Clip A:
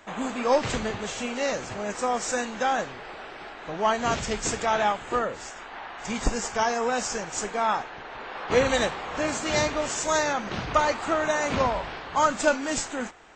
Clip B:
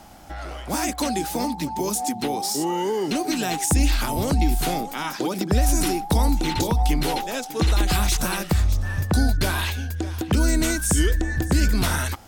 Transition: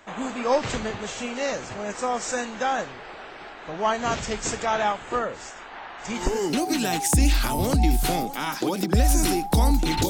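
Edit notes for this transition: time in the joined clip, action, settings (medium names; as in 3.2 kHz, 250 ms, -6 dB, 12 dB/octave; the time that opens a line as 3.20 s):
clip A
6.34 s: go over to clip B from 2.92 s, crossfade 0.46 s equal-power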